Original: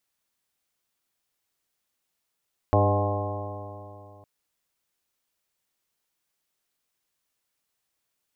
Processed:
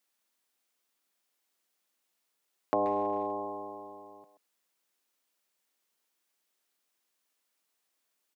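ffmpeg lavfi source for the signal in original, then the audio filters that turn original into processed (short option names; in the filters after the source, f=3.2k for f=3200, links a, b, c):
-f lavfi -i "aevalsrc='0.106*pow(10,-3*t/2.77)*sin(2*PI*99.18*t)+0.0224*pow(10,-3*t/2.77)*sin(2*PI*198.83*t)+0.0447*pow(10,-3*t/2.77)*sin(2*PI*299.43*t)+0.0398*pow(10,-3*t/2.77)*sin(2*PI*401.44*t)+0.0473*pow(10,-3*t/2.77)*sin(2*PI*505.31*t)+0.075*pow(10,-3*t/2.77)*sin(2*PI*611.48*t)+0.0473*pow(10,-3*t/2.77)*sin(2*PI*720.38*t)+0.0501*pow(10,-3*t/2.77)*sin(2*PI*832.4*t)+0.0126*pow(10,-3*t/2.77)*sin(2*PI*947.93*t)+0.0422*pow(10,-3*t/2.77)*sin(2*PI*1067.34*t)':d=1.51:s=44100"
-filter_complex "[0:a]highpass=f=200:w=0.5412,highpass=f=200:w=1.3066,acompressor=threshold=-26dB:ratio=3,asplit=2[a][b];[b]adelay=130,highpass=300,lowpass=3.4k,asoftclip=type=hard:threshold=-24dB,volume=-11dB[c];[a][c]amix=inputs=2:normalize=0"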